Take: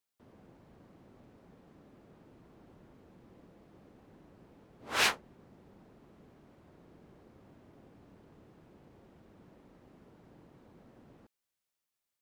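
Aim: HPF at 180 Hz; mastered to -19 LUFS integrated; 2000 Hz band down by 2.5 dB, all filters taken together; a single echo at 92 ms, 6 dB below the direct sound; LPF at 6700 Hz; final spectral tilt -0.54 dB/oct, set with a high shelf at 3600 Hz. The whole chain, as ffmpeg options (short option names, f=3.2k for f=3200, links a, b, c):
-af "highpass=180,lowpass=6.7k,equalizer=f=2k:t=o:g=-4.5,highshelf=f=3.6k:g=4,aecho=1:1:92:0.501,volume=11dB"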